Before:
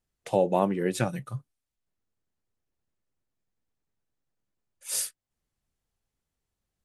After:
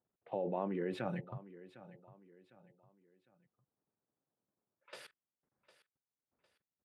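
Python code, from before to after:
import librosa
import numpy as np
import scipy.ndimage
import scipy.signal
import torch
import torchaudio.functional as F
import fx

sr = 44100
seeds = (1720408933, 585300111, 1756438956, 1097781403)

p1 = fx.env_lowpass(x, sr, base_hz=2300.0, full_db=-25.0)
p2 = fx.tremolo_random(p1, sr, seeds[0], hz=3.5, depth_pct=75)
p3 = fx.env_lowpass(p2, sr, base_hz=1200.0, full_db=-40.5)
p4 = fx.level_steps(p3, sr, step_db=22)
p5 = scipy.signal.sosfilt(scipy.signal.bessel(2, 230.0, 'highpass', norm='mag', fs=sr, output='sos'), p4)
p6 = fx.air_absorb(p5, sr, metres=450.0)
p7 = p6 + fx.echo_feedback(p6, sr, ms=755, feedback_pct=37, wet_db=-17.0, dry=0)
y = p7 * librosa.db_to_amplitude(10.5)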